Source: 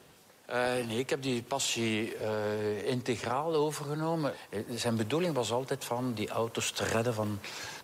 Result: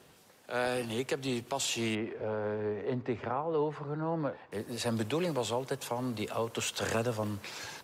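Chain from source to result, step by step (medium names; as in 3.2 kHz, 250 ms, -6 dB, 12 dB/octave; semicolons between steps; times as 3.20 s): 1.95–4.52 s: low-pass 1.8 kHz 12 dB/octave; trim -1.5 dB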